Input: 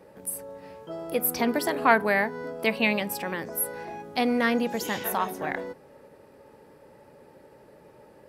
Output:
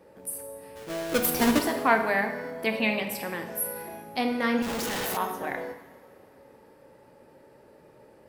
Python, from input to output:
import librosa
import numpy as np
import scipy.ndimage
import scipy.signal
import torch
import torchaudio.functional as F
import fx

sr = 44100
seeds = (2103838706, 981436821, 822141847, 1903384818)

y = fx.halfwave_hold(x, sr, at=(0.75, 1.6), fade=0.02)
y = fx.rev_double_slope(y, sr, seeds[0], early_s=0.9, late_s=3.5, knee_db=-20, drr_db=4.5)
y = fx.schmitt(y, sr, flips_db=-43.5, at=(4.62, 5.17))
y = y * librosa.db_to_amplitude(-3.0)